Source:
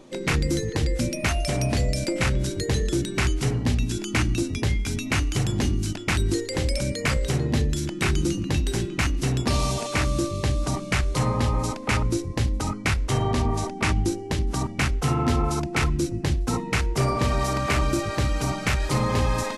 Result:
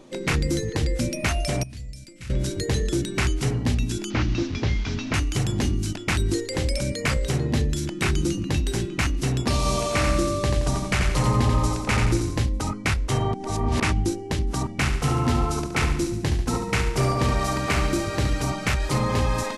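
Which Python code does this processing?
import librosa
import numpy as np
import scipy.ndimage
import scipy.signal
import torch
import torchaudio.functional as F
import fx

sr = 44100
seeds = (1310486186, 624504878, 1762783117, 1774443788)

y = fx.tone_stack(x, sr, knobs='6-0-2', at=(1.63, 2.3))
y = fx.delta_mod(y, sr, bps=32000, step_db=-34.0, at=(4.1, 5.14))
y = fx.echo_feedback(y, sr, ms=87, feedback_pct=44, wet_db=-4.0, at=(9.57, 12.45))
y = fx.echo_feedback(y, sr, ms=71, feedback_pct=52, wet_db=-8.0, at=(14.78, 18.42))
y = fx.edit(y, sr, fx.reverse_span(start_s=13.34, length_s=0.46), tone=tone)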